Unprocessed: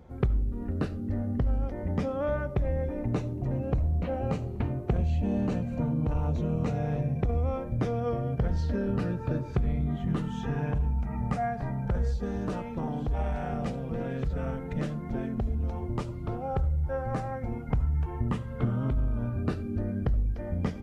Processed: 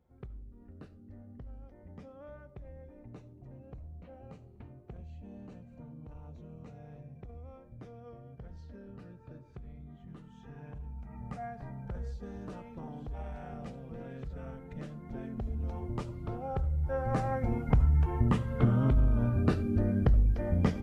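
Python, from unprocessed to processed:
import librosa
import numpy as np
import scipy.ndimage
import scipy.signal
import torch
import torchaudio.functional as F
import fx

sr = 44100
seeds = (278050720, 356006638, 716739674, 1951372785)

y = fx.gain(x, sr, db=fx.line((10.29, -20.0), (11.42, -11.0), (14.87, -11.0), (15.72, -4.5), (16.65, -4.5), (17.32, 2.5)))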